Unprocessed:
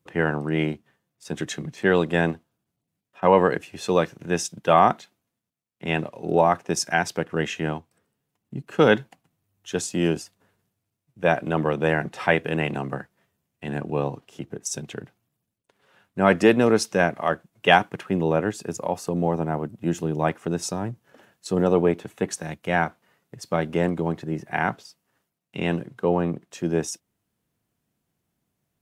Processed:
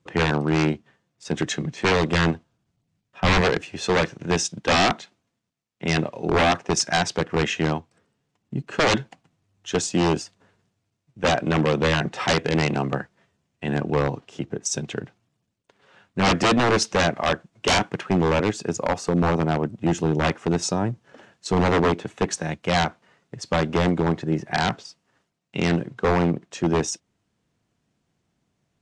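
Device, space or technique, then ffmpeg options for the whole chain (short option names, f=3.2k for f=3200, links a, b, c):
synthesiser wavefolder: -filter_complex "[0:a]aeval=exprs='0.133*(abs(mod(val(0)/0.133+3,4)-2)-1)':c=same,lowpass=f=7.6k:w=0.5412,lowpass=f=7.6k:w=1.3066,asettb=1/sr,asplit=3[a][b][c];[a]atrim=end=2.074[d];[b]atrim=start=2.07:end=3.41,asetpts=PTS-STARTPTS,afade=t=in:d=0.004:c=qsin,afade=t=out:st=1.336:d=0.004:c=qsin,asubboost=boost=6.5:cutoff=180[e];[c]atrim=start=3.406[f];[d][e]acrossfade=d=0.004:c1=hsin:c2=qsin[g];[g][f]acrossfade=d=0.004:c1=qsin:c2=hsin,volume=5dB"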